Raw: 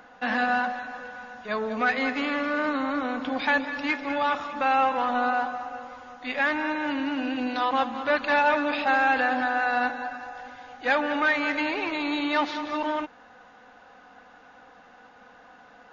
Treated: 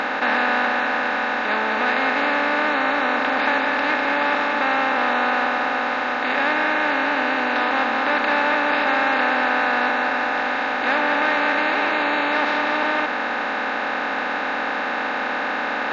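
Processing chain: spectral levelling over time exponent 0.2; trim -5 dB

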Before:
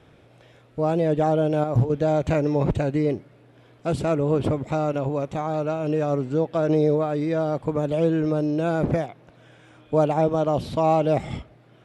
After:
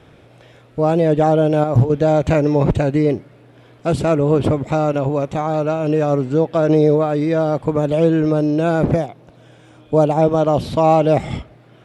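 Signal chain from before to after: 8.94–10.22 s: peaking EQ 1.8 kHz -6 dB 1.5 oct; trim +6.5 dB

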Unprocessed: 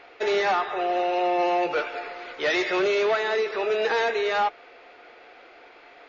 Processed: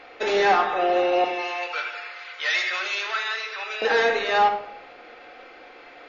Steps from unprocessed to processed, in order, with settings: 1.24–3.82 s: high-pass 1.4 kHz 12 dB/octave; reverberation RT60 0.75 s, pre-delay 4 ms, DRR 3 dB; trim +2 dB

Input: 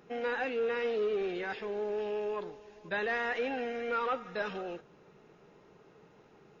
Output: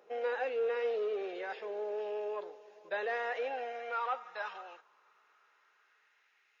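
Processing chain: high-pass sweep 530 Hz -> 2 kHz, 3.16–6.43 s; trim -5.5 dB

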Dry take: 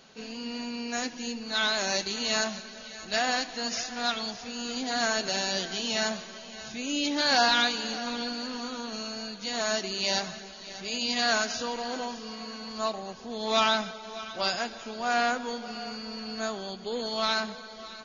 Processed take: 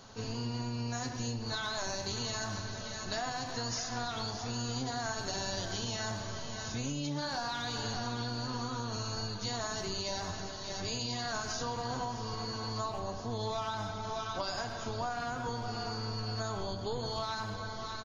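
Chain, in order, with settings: octave divider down 1 oct, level +1 dB; bass shelf 61 Hz +7.5 dB; peak limiter -20.5 dBFS, peak gain reduction 9.5 dB; fifteen-band graphic EQ 1 kHz +7 dB, 2.5 kHz -7 dB, 6.3 kHz +3 dB; speakerphone echo 100 ms, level -9 dB; reverberation RT60 0.65 s, pre-delay 7 ms, DRR 8 dB; compression, threshold -33 dBFS, peak gain reduction 10.5 dB

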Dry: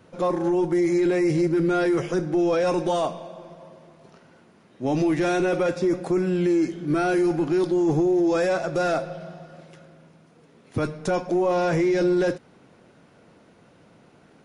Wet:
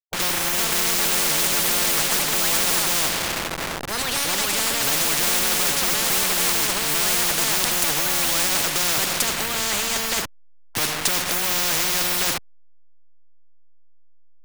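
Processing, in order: send-on-delta sampling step -37.5 dBFS; ever faster or slower copies 429 ms, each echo +4 st, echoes 2; spectrum-flattening compressor 10:1; trim +8 dB

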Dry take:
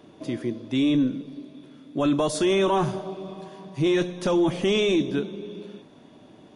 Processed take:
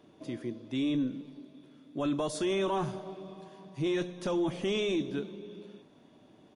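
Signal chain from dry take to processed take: speakerphone echo 370 ms, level -24 dB; trim -8.5 dB

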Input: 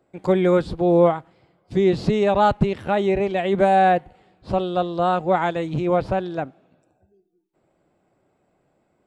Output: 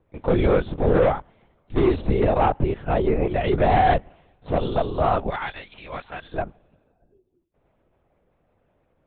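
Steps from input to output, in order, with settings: 5.29–6.34 s: high-pass 1.4 kHz 12 dB/octave; overload inside the chain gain 13.5 dB; LPC vocoder at 8 kHz whisper; 2.01–3.41 s: low-pass 1.8 kHz 6 dB/octave

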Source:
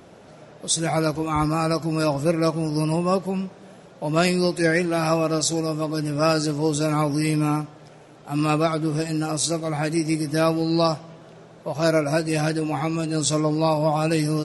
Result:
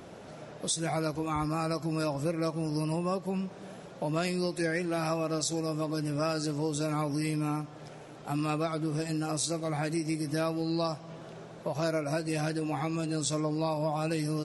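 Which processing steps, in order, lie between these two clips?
compression 3:1, threshold -31 dBFS, peak gain reduction 12 dB

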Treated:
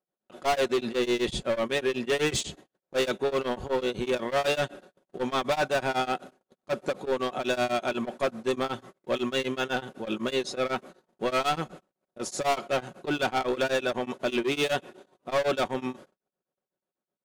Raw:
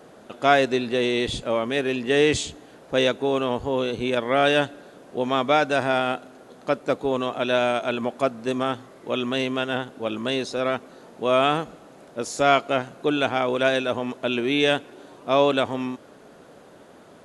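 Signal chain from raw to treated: gate -42 dBFS, range -41 dB; comb 5.4 ms, depth 45%; overload inside the chain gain 20.5 dB; tremolo of two beating tones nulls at 8 Hz

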